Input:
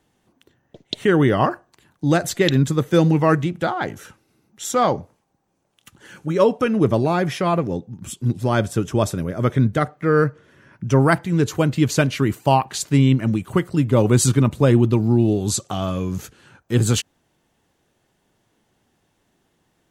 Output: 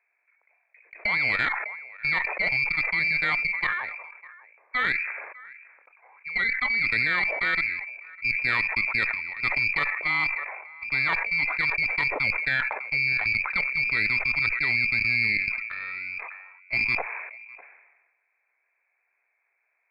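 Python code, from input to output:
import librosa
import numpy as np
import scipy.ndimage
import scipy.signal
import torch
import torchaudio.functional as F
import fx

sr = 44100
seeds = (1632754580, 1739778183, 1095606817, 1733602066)

y = fx.freq_invert(x, sr, carrier_hz=2500)
y = scipy.signal.sosfilt(scipy.signal.butter(4, 470.0, 'highpass', fs=sr, output='sos'), y)
y = y + 10.0 ** (-19.5 / 20.0) * np.pad(y, (int(603 * sr / 1000.0), 0))[:len(y)]
y = fx.level_steps(y, sr, step_db=10)
y = fx.tube_stage(y, sr, drive_db=9.0, bias=0.75)
y = fx.sustainer(y, sr, db_per_s=47.0)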